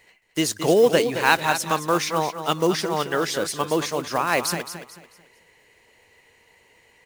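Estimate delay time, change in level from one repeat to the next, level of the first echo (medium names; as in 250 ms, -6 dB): 220 ms, -10.0 dB, -10.0 dB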